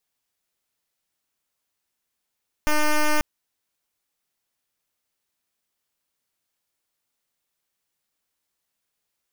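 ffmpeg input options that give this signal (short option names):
-f lavfi -i "aevalsrc='0.119*(2*lt(mod(302*t,1),0.08)-1)':d=0.54:s=44100"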